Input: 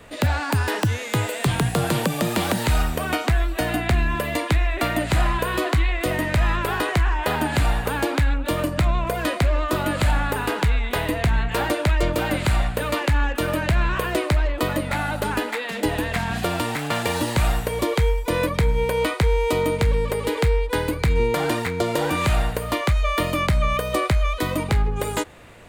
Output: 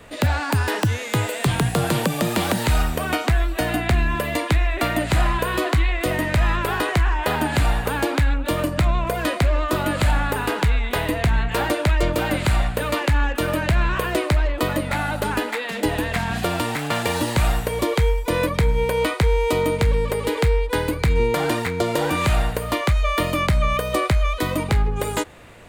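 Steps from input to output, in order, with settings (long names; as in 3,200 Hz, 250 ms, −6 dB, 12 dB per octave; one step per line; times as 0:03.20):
level +1 dB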